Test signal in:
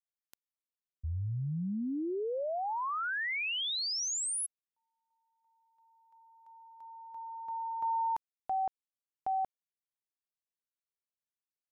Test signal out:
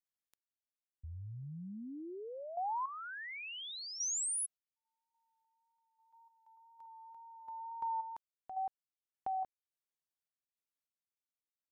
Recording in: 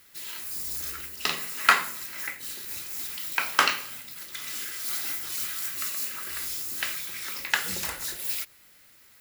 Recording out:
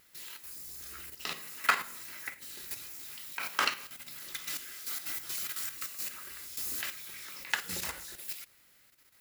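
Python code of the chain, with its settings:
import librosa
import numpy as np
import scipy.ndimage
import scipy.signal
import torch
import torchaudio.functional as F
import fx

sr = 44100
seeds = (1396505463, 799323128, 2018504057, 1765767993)

y = fx.wow_flutter(x, sr, seeds[0], rate_hz=2.1, depth_cents=19.0)
y = fx.tremolo_random(y, sr, seeds[1], hz=3.5, depth_pct=55)
y = fx.level_steps(y, sr, step_db=9)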